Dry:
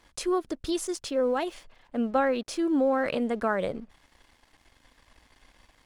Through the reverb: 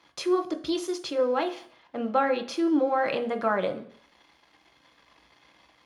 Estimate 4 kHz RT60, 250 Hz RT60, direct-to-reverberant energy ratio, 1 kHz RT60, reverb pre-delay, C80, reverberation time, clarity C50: 0.65 s, 0.55 s, 6.0 dB, 0.55 s, 3 ms, 17.5 dB, 0.55 s, 14.0 dB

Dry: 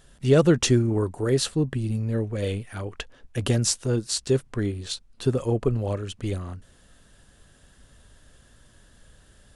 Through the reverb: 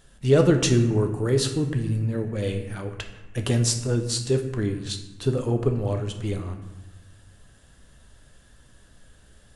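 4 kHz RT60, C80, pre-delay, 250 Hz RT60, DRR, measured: 0.70 s, 10.5 dB, 10 ms, 1.6 s, 5.0 dB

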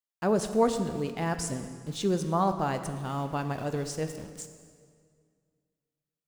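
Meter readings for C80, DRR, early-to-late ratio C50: 10.5 dB, 8.0 dB, 9.5 dB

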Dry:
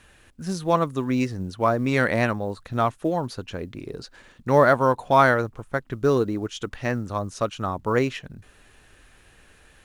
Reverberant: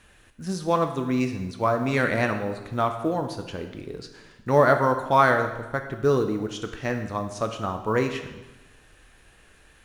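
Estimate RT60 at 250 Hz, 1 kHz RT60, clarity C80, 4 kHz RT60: 1.1 s, 1.1 s, 10.0 dB, 1.0 s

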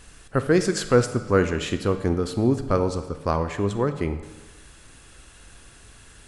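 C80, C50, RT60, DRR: 12.0 dB, 10.5 dB, 1.2 s, 9.0 dB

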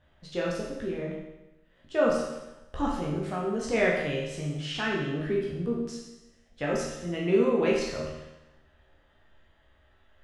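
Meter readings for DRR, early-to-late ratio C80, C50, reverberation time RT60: −4.5 dB, 4.5 dB, 1.5 dB, 1.0 s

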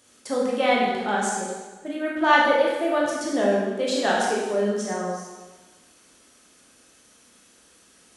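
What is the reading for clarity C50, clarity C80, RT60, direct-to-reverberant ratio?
0.0 dB, 2.5 dB, 1.3 s, −4.5 dB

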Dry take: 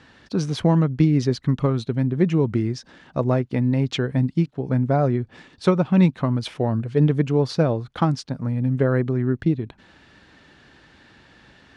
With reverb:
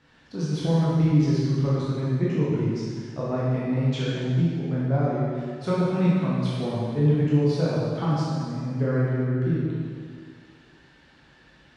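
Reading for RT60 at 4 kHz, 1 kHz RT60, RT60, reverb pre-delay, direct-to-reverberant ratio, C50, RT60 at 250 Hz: 1.9 s, 2.0 s, 2.0 s, 8 ms, −8.5 dB, −3.5 dB, 2.0 s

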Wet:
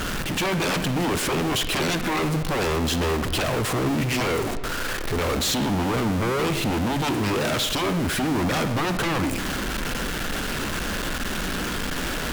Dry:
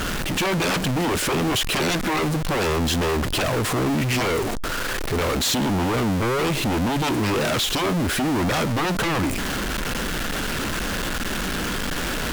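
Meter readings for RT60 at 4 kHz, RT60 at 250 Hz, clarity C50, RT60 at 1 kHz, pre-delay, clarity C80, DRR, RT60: 0.85 s, 1.3 s, 10.5 dB, 1.1 s, 39 ms, 12.0 dB, 10.0 dB, 1.2 s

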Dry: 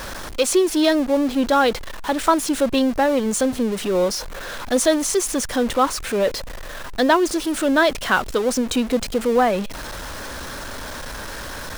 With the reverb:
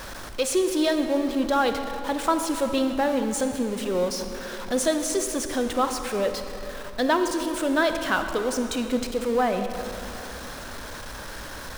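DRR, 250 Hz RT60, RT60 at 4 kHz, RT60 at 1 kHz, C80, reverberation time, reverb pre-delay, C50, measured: 6.5 dB, 3.3 s, 2.0 s, 2.8 s, 8.0 dB, 3.0 s, 32 ms, 7.0 dB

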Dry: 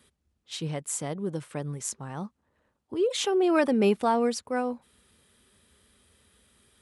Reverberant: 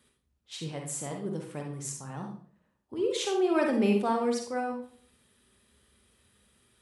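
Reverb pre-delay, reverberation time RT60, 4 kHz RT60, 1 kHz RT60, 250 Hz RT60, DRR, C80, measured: 40 ms, 0.50 s, 0.40 s, 0.45 s, 0.65 s, 1.5 dB, 9.5 dB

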